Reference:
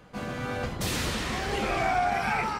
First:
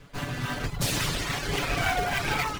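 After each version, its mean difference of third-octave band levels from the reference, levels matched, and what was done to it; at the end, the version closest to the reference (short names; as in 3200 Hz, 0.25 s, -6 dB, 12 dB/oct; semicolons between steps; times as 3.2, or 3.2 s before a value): 4.5 dB: minimum comb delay 7 ms; reverb removal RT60 0.61 s; bell 480 Hz -9.5 dB 2.9 oct; in parallel at -4 dB: decimation with a swept rate 22×, swing 160% 3.6 Hz; on the sum: gain +5.5 dB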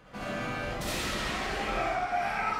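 3.0 dB: bell 1700 Hz +3.5 dB 2.8 oct; compressor 4:1, threshold -30 dBFS, peak gain reduction 9.5 dB; digital reverb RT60 0.55 s, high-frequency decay 0.55×, pre-delay 25 ms, DRR -5 dB; gain -5 dB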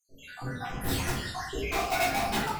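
7.5 dB: random spectral dropouts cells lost 79%; high shelf 8800 Hz +6.5 dB; wrapped overs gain 23 dB; shoebox room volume 160 m³, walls mixed, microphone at 3.4 m; gain -9 dB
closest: second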